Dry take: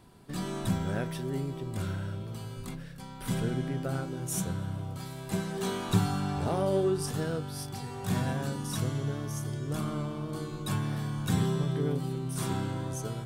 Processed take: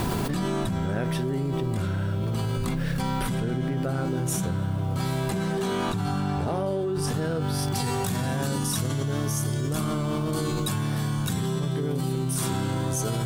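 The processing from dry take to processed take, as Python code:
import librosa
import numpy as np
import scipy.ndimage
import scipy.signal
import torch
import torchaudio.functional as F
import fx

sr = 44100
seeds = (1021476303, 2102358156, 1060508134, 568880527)

y = fx.high_shelf(x, sr, hz=4300.0, db=fx.steps((0.0, -6.0), (7.74, 6.0)))
y = fx.quant_dither(y, sr, seeds[0], bits=12, dither='triangular')
y = fx.env_flatten(y, sr, amount_pct=100)
y = y * 10.0 ** (-6.5 / 20.0)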